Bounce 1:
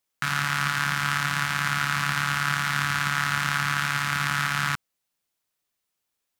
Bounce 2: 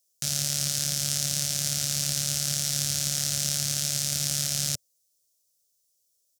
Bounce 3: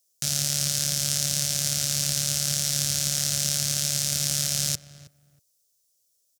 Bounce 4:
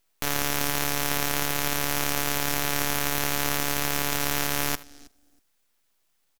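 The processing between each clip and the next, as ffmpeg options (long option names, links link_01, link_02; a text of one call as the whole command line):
ffmpeg -i in.wav -af "firequalizer=gain_entry='entry(110,0);entry(210,-8);entry(580,5);entry(960,-28);entry(3300,-3);entry(5600,12);entry(13000,9)':delay=0.05:min_phase=1" out.wav
ffmpeg -i in.wav -filter_complex "[0:a]asplit=2[link_01][link_02];[link_02]adelay=319,lowpass=frequency=1400:poles=1,volume=-14.5dB,asplit=2[link_03][link_04];[link_04]adelay=319,lowpass=frequency=1400:poles=1,volume=0.21[link_05];[link_01][link_03][link_05]amix=inputs=3:normalize=0,volume=2dB" out.wav
ffmpeg -i in.wav -af "aecho=1:1:78:0.119,aeval=exprs='abs(val(0))':channel_layout=same" out.wav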